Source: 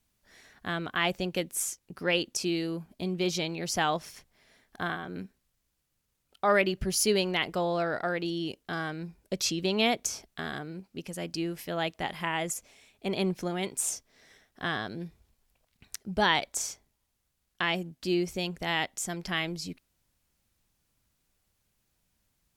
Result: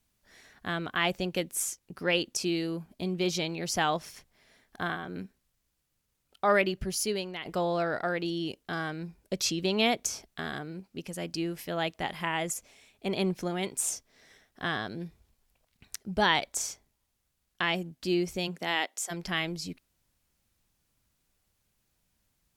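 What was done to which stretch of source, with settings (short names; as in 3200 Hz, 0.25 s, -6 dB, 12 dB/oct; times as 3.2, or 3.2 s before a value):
6.52–7.45 fade out, to -12 dB
18.47–19.1 HPF 120 Hz -> 500 Hz 24 dB/oct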